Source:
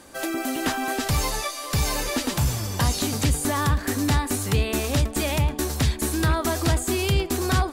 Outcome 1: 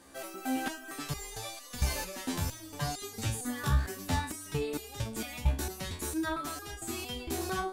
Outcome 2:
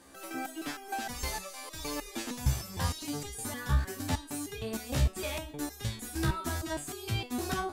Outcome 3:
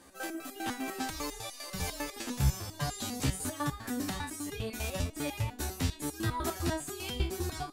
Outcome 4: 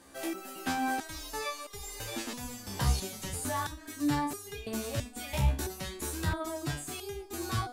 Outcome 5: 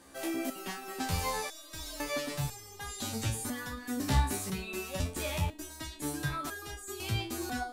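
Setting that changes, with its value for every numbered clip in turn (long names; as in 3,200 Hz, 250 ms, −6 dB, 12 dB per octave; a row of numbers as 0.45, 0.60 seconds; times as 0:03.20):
step-sequenced resonator, speed: 4.4, 6.5, 10, 3, 2 Hertz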